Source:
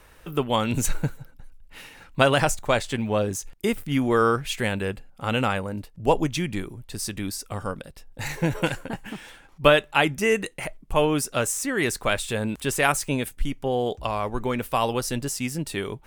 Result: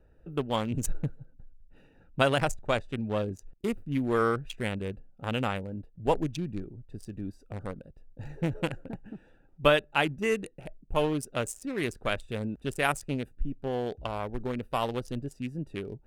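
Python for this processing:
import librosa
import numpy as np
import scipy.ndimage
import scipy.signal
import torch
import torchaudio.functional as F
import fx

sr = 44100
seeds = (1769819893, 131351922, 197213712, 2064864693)

y = fx.wiener(x, sr, points=41)
y = y * 10.0 ** (-5.0 / 20.0)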